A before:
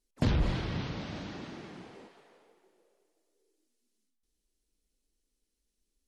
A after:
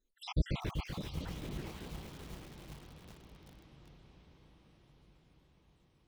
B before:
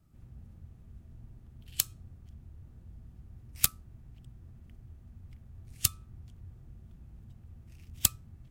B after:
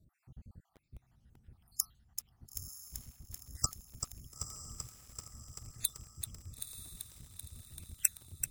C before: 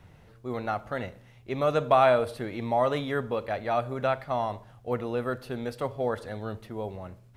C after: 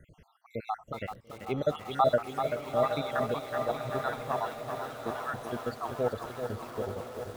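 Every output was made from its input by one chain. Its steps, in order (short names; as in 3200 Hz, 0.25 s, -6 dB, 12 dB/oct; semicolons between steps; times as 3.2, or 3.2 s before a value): random spectral dropouts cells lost 71%; diffused feedback echo 0.933 s, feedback 56%, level -9.5 dB; lo-fi delay 0.386 s, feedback 80%, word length 8-bit, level -7 dB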